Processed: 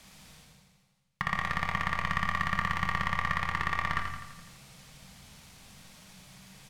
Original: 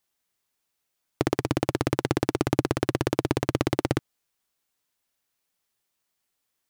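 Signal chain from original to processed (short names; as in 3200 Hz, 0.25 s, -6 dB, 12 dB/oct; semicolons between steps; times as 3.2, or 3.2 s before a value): LPF 9400 Hz 12 dB/oct; notch 1300 Hz, Q 9.7; one-sided clip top -14.5 dBFS; tone controls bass -10 dB, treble -5 dB; reverse; upward compressor, threshold -28 dBFS; reverse; ring modulator 1500 Hz; resonant low shelf 250 Hz +9 dB, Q 3; on a send: feedback echo 84 ms, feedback 56%, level -7 dB; on the sum: shoebox room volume 290 m³, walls mixed, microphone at 0.56 m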